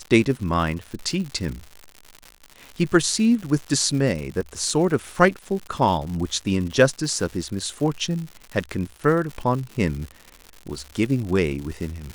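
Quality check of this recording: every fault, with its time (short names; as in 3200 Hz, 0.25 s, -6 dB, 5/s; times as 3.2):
crackle 160/s -30 dBFS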